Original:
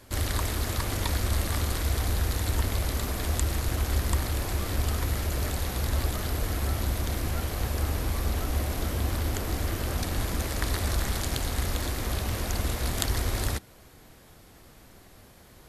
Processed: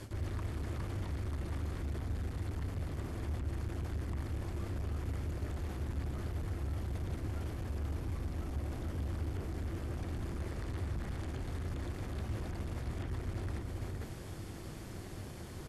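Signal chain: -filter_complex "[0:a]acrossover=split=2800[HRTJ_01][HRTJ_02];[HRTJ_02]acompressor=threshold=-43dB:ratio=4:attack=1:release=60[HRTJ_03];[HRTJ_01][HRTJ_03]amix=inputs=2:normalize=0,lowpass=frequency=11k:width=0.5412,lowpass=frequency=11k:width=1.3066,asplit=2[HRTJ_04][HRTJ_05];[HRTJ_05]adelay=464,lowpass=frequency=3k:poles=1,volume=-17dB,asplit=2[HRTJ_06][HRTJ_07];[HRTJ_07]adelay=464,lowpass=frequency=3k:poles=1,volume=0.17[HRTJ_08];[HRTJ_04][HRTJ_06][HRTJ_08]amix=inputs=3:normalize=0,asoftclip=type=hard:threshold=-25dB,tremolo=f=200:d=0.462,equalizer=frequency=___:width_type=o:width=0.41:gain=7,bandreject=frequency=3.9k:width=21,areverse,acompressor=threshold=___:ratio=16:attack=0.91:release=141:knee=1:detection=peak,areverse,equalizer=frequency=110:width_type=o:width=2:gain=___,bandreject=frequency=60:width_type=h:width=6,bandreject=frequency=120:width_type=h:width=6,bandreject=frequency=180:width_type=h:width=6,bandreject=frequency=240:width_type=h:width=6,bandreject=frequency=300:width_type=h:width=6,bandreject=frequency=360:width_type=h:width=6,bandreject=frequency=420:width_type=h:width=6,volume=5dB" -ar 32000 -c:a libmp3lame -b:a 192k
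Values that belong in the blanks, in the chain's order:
350, -43dB, 9.5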